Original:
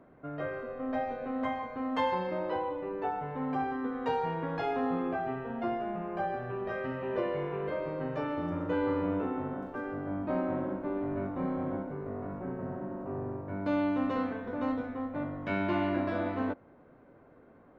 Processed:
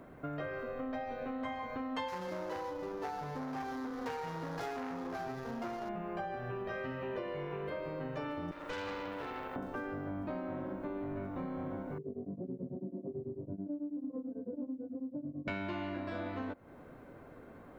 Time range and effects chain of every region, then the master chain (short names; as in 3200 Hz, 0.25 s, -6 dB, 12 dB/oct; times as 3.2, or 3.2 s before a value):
2.08–5.89 median filter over 15 samples + core saturation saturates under 910 Hz
8.51–9.56 HPF 380 Hz + tilt +2 dB/oct + tube stage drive 35 dB, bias 0.8
11.98–15.48 spectral contrast raised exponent 1.7 + Chebyshev band-pass 150–480 Hz + beating tremolo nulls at 9.1 Hz
whole clip: low shelf 120 Hz +5.5 dB; compressor, threshold -41 dBFS; high shelf 2800 Hz +11 dB; gain +3.5 dB